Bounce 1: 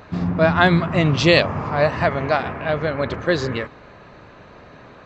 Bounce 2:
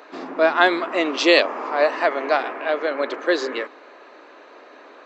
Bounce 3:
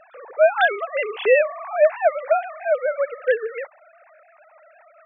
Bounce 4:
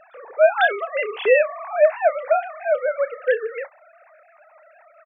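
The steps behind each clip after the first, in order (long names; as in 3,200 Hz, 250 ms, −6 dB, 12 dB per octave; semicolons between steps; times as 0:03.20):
Butterworth high-pass 280 Hz 48 dB per octave
three sine waves on the formant tracks
double-tracking delay 30 ms −14 dB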